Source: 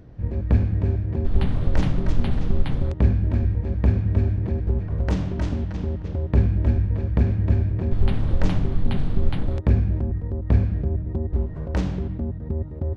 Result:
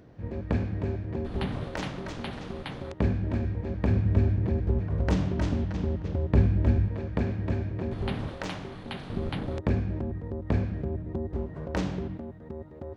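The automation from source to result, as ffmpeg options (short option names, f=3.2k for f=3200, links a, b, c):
-af "asetnsamples=n=441:p=0,asendcmd='1.64 highpass f 650;3 highpass f 210;3.9 highpass f 84;6.88 highpass f 280;8.29 highpass f 850;9.1 highpass f 230;12.17 highpass f 640',highpass=f=270:p=1"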